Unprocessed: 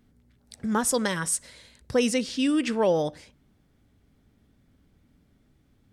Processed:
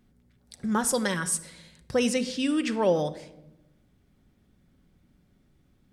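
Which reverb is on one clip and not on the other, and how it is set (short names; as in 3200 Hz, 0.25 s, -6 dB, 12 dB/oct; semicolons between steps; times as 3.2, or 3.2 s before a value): shoebox room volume 3100 m³, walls furnished, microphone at 0.97 m; gain -1.5 dB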